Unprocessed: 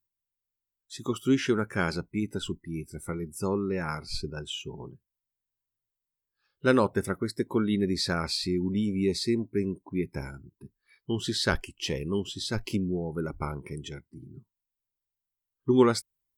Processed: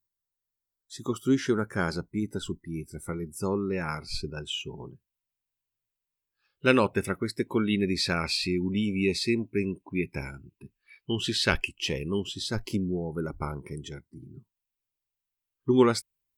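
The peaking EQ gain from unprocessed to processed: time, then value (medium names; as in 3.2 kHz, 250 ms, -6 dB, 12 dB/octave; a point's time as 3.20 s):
peaking EQ 2.6 kHz 0.46 oct
-9.5 dB
from 2.54 s -2 dB
from 3.73 s +5.5 dB
from 6.66 s +15 dB
from 11.68 s +5.5 dB
from 12.48 s -5 dB
from 14.23 s +5 dB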